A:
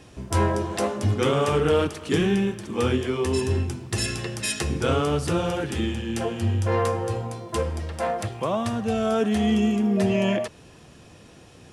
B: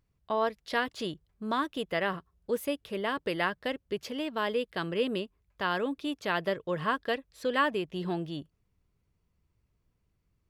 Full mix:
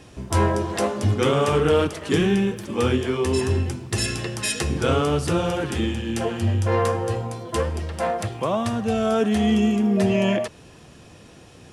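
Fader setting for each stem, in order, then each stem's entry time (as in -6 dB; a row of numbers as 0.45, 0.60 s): +2.0, -11.5 dB; 0.00, 0.00 s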